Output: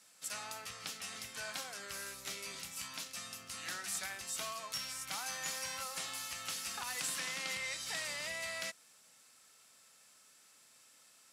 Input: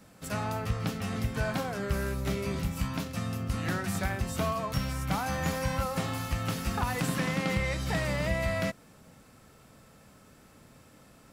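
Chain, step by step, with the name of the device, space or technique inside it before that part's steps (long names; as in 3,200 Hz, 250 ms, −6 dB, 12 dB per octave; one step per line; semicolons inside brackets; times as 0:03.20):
piezo pickup straight into a mixer (low-pass filter 8,400 Hz 12 dB per octave; first difference)
level +5 dB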